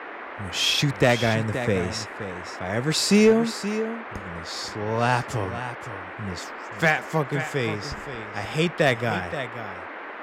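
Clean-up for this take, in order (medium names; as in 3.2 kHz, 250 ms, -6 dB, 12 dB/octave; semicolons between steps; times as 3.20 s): clip repair -10 dBFS; noise print and reduce 30 dB; inverse comb 525 ms -11 dB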